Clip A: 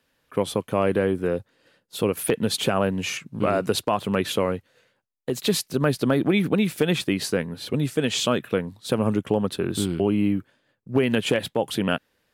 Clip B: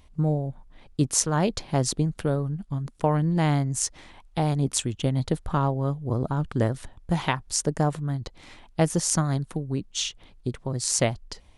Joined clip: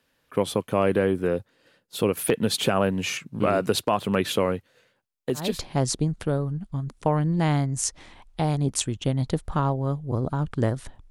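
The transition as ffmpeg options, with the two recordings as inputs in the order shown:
ffmpeg -i cue0.wav -i cue1.wav -filter_complex "[0:a]apad=whole_dur=11.1,atrim=end=11.1,atrim=end=5.63,asetpts=PTS-STARTPTS[link_01];[1:a]atrim=start=1.31:end=7.08,asetpts=PTS-STARTPTS[link_02];[link_01][link_02]acrossfade=duration=0.3:curve1=tri:curve2=tri" out.wav

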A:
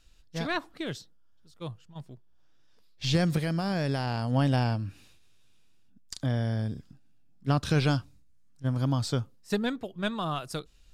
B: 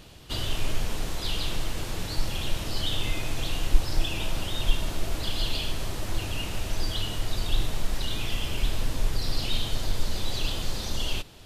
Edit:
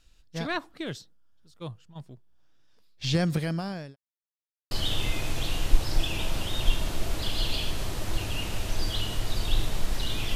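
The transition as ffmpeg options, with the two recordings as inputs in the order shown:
ffmpeg -i cue0.wav -i cue1.wav -filter_complex "[0:a]apad=whole_dur=10.35,atrim=end=10.35,asplit=2[link_01][link_02];[link_01]atrim=end=3.96,asetpts=PTS-STARTPTS,afade=type=out:start_time=3.51:duration=0.45[link_03];[link_02]atrim=start=3.96:end=4.71,asetpts=PTS-STARTPTS,volume=0[link_04];[1:a]atrim=start=2.72:end=8.36,asetpts=PTS-STARTPTS,afade=type=in:duration=0.004:curve=hsin[link_05];[link_03][link_04][link_05]concat=n=3:v=0:a=1" out.wav

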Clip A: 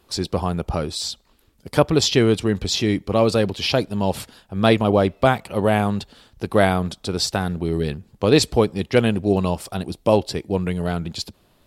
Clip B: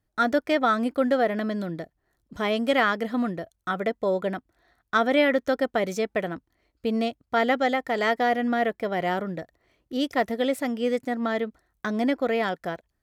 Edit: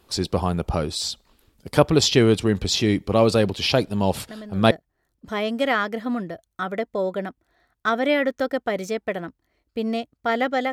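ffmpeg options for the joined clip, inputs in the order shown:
ffmpeg -i cue0.wav -i cue1.wav -filter_complex "[1:a]asplit=2[link_01][link_02];[0:a]apad=whole_dur=10.72,atrim=end=10.72,atrim=end=4.712[link_03];[link_02]atrim=start=1.788:end=7.8[link_04];[link_01]atrim=start=1.38:end=1.79,asetpts=PTS-STARTPTS,volume=-9.5dB,afade=type=in:duration=0.004:curve=hsin,afade=type=out:start_time=0.406:duration=0.004:curve=hsin,adelay=4300[link_05];[link_03][link_04]acrossfade=duration=0.004:curve1=hsin:curve2=hsin[link_06];[link_06][link_05]amix=inputs=2:normalize=0" out.wav

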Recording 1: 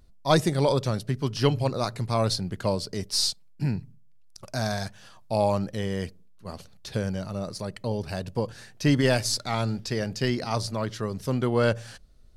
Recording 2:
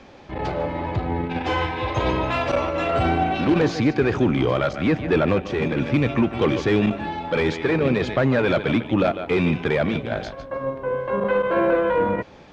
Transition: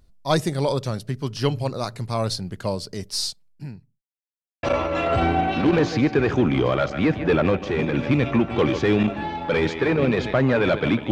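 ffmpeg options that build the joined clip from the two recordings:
ffmpeg -i cue0.wav -i cue1.wav -filter_complex "[0:a]apad=whole_dur=11.11,atrim=end=11.11,asplit=2[link_01][link_02];[link_01]atrim=end=4.02,asetpts=PTS-STARTPTS,afade=type=out:start_time=3.07:duration=0.95[link_03];[link_02]atrim=start=4.02:end=4.63,asetpts=PTS-STARTPTS,volume=0[link_04];[1:a]atrim=start=2.46:end=8.94,asetpts=PTS-STARTPTS,afade=type=in:duration=0.004:curve=hsin[link_05];[link_03][link_04][link_05]concat=n=3:v=0:a=1" out.wav

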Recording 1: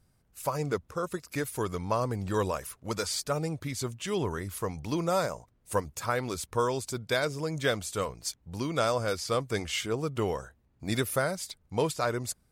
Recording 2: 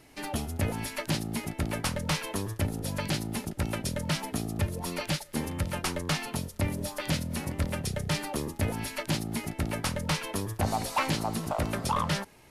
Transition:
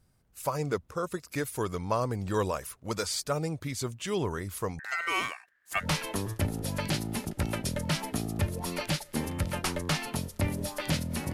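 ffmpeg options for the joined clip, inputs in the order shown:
ffmpeg -i cue0.wav -i cue1.wav -filter_complex "[0:a]asettb=1/sr,asplit=3[link_01][link_02][link_03];[link_01]atrim=end=4.794[link_04];[link_02]atrim=start=4.79:end=5.87,asetpts=PTS-STARTPTS,afade=type=in:duration=0.004:curve=qsin,afade=type=out:start_time=1.076:duration=0.004:curve=qsin,aeval=exprs='val(0)*sin(2*PI*1700*n/s)':channel_layout=same[link_05];[link_03]atrim=start=5.866[link_06];[link_04][link_05]acrossfade=duration=0.004:curve1=hsin:curve2=qsin[link_07];[link_07][link_06]acrossfade=duration=0.004:curve1=qsin:curve2=hsin,apad=whole_dur=11.33,atrim=end=11.33,atrim=end=5.87,asetpts=PTS-STARTPTS[link_08];[1:a]atrim=start=1.99:end=7.53,asetpts=PTS-STARTPTS[link_09];[link_08][link_09]acrossfade=duration=0.08:curve1=tri:curve2=tri" out.wav

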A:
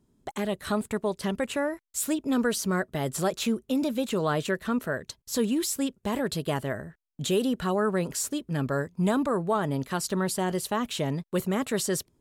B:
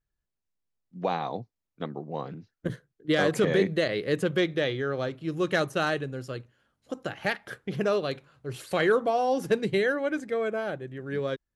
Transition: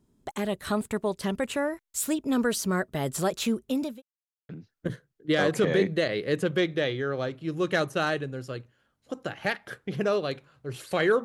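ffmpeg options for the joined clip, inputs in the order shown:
ffmpeg -i cue0.wav -i cue1.wav -filter_complex "[0:a]apad=whole_dur=11.24,atrim=end=11.24,asplit=2[link_01][link_02];[link_01]atrim=end=4.02,asetpts=PTS-STARTPTS,afade=type=out:start_time=3.61:duration=0.41:curve=qsin[link_03];[link_02]atrim=start=4.02:end=4.49,asetpts=PTS-STARTPTS,volume=0[link_04];[1:a]atrim=start=2.29:end=9.04,asetpts=PTS-STARTPTS,afade=type=in:duration=0.004:curve=hsin[link_05];[link_03][link_04][link_05]concat=n=3:v=0:a=1" out.wav

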